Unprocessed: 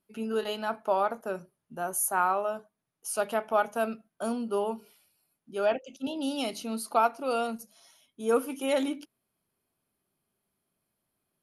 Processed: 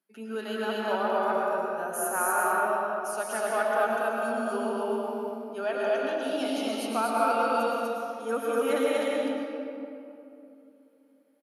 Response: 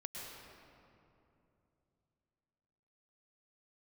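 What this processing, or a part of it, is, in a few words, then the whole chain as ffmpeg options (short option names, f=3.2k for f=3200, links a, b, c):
stadium PA: -filter_complex "[0:a]highpass=f=200:w=0.5412,highpass=f=200:w=1.3066,equalizer=f=1.7k:t=o:w=0.5:g=7,aecho=1:1:177.8|244.9:0.355|1[a];[1:a]atrim=start_sample=2205[b];[a][b]afir=irnorm=-1:irlink=0"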